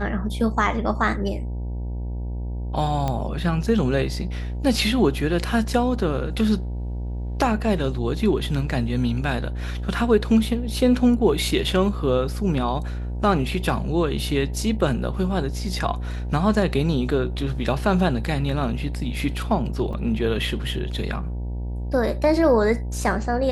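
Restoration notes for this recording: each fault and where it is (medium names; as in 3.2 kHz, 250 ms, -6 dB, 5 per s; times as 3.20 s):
buzz 60 Hz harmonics 16 -28 dBFS
3.08 s: pop -13 dBFS
19.93 s: dropout 3.5 ms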